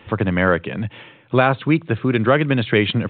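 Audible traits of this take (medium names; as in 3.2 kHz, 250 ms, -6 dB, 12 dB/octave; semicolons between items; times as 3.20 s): µ-law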